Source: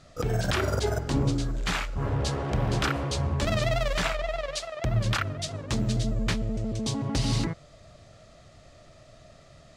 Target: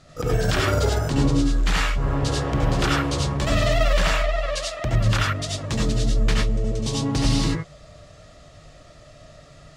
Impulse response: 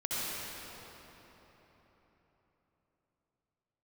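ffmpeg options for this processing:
-filter_complex "[1:a]atrim=start_sample=2205,atrim=end_sample=4410,asetrate=39249,aresample=44100[a];[0:a][a]afir=irnorm=-1:irlink=0,volume=4dB"

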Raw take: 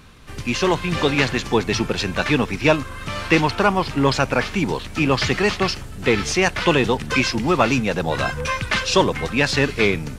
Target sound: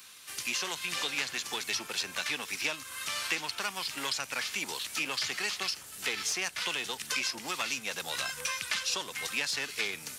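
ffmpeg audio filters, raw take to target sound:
-filter_complex "[0:a]aeval=exprs='0.794*(cos(1*acos(clip(val(0)/0.794,-1,1)))-cos(1*PI/2))+0.0794*(cos(4*acos(clip(val(0)/0.794,-1,1)))-cos(4*PI/2))':c=same,aderivative,acrossover=split=250|1500[a][b][c];[a]acompressor=threshold=-59dB:ratio=4[d];[b]acompressor=threshold=-48dB:ratio=4[e];[c]acompressor=threshold=-40dB:ratio=4[f];[d][e][f]amix=inputs=3:normalize=0,volume=7.5dB"

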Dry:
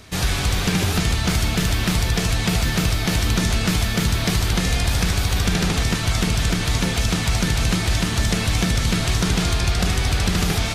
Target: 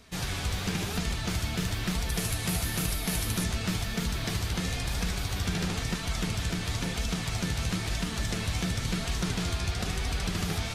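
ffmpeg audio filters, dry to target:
-filter_complex "[0:a]asettb=1/sr,asplit=3[a][b][c];[a]atrim=end=2.094[d];[b]atrim=start=2.09:end=3.44,asetpts=PTS-STARTPTS,afade=t=in:d=0.004:c=qsin,afade=t=out:st=1.346:d=0.004:c=qsin,equalizer=f=11k:w=1.5:g=14[e];[c]atrim=start=3.436[f];[d][e]acrossfade=d=0.004:c1=hsin:c2=qsin[g];[g][f]acrossfade=d=0.004:c1=qsin:c2=hsin,flanger=delay=4.2:depth=8.1:regen=-34:speed=0.99:shape=sinusoidal,volume=-6.5dB"

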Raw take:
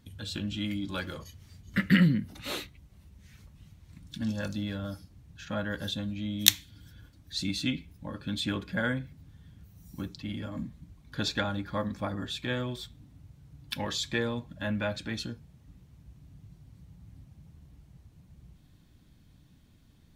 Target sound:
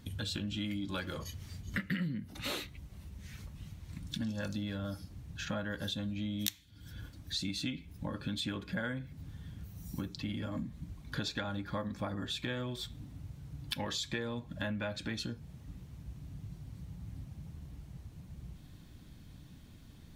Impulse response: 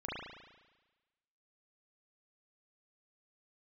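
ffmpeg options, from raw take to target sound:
-af "acompressor=threshold=-41dB:ratio=5,volume=6dB"

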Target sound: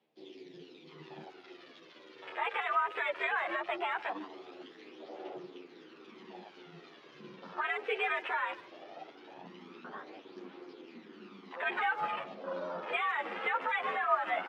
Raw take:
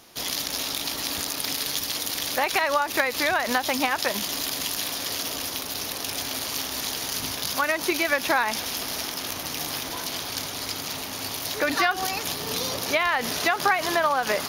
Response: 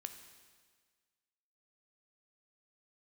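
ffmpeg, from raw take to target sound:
-filter_complex "[0:a]lowpass=f=2.8k:w=0.5412,lowpass=f=2.8k:w=1.3066,aemphasis=mode=production:type=50fm,bandreject=f=50:t=h:w=6,bandreject=f=100:t=h:w=6,bandreject=f=150:t=h:w=6,bandreject=f=200:t=h:w=6,bandreject=f=250:t=h:w=6,bandreject=f=300:t=h:w=6,bandreject=f=350:t=h:w=6,afwtdn=0.0316,asetnsamples=n=441:p=0,asendcmd='0.89 equalizer g 3.5',equalizer=f=1.2k:t=o:w=1:g=-12,alimiter=limit=-16.5dB:level=0:latency=1:release=10,aphaser=in_gain=1:out_gain=1:delay=2.8:decay=0.47:speed=0.19:type=triangular,afreqshift=96,asplit=2[a][b];[b]adelay=150,highpass=300,lowpass=3.4k,asoftclip=type=hard:threshold=-20dB,volume=-19dB[c];[a][c]amix=inputs=2:normalize=0,asplit=2[d][e];[e]adelay=9.9,afreqshift=-1[f];[d][f]amix=inputs=2:normalize=1,volume=-4.5dB"

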